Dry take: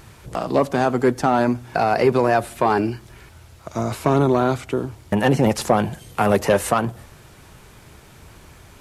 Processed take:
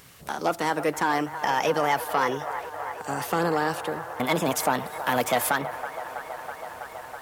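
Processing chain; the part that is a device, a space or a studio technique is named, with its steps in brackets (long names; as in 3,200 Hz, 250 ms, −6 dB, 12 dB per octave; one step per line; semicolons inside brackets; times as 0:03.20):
spectral tilt +2 dB per octave
delay with a band-pass on its return 397 ms, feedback 84%, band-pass 860 Hz, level −11 dB
nightcore (speed change +22%)
level −5 dB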